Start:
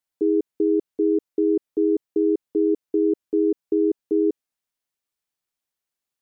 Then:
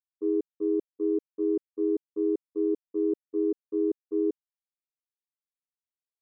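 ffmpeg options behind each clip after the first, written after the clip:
-af "agate=range=-33dB:threshold=-13dB:ratio=3:detection=peak"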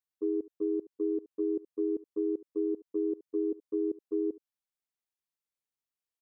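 -af "aecho=1:1:72:0.075,acompressor=threshold=-27dB:ratio=6"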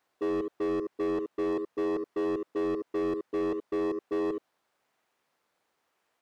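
-filter_complex "[0:a]asplit=2[a][b];[b]acrusher=samples=11:mix=1:aa=0.000001:lfo=1:lforange=6.6:lforate=0.94,volume=-9.5dB[c];[a][c]amix=inputs=2:normalize=0,asplit=2[d][e];[e]highpass=f=720:p=1,volume=35dB,asoftclip=type=tanh:threshold=-21.5dB[f];[d][f]amix=inputs=2:normalize=0,lowpass=f=1k:p=1,volume=-6dB,volume=-2dB"

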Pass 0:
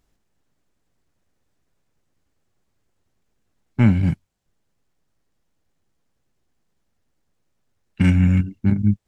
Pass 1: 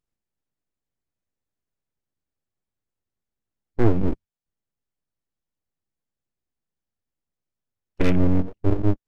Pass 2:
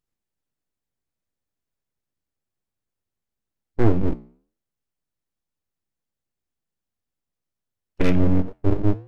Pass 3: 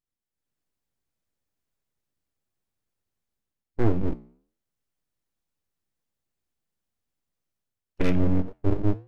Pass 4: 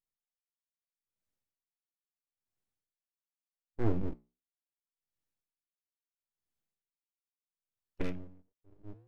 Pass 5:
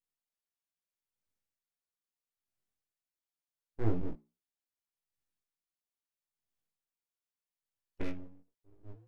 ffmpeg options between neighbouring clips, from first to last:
-af "afwtdn=0.0398,aeval=exprs='abs(val(0))':c=same"
-af "flanger=delay=9.7:depth=6.6:regen=-81:speed=1.3:shape=triangular,volume=5dB"
-af "dynaudnorm=f=280:g=3:m=10dB,volume=-8.5dB"
-af "aeval=exprs='val(0)*pow(10,-38*(0.5-0.5*cos(2*PI*0.76*n/s))/20)':c=same,volume=-6.5dB"
-af "flanger=delay=17.5:depth=7.1:speed=0.23,volume=1dB"

